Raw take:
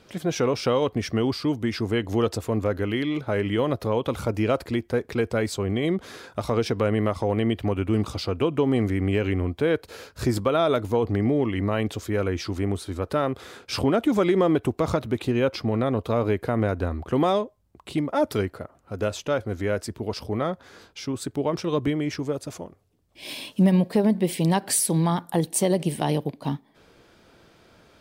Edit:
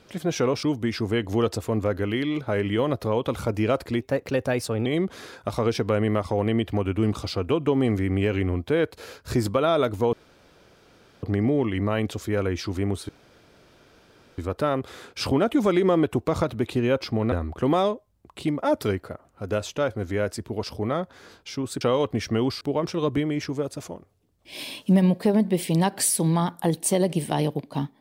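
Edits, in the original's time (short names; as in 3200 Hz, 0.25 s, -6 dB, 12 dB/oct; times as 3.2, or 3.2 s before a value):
0.63–1.43 move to 21.31
4.81–5.77 speed 113%
11.04 insert room tone 1.10 s
12.9 insert room tone 1.29 s
15.84–16.82 cut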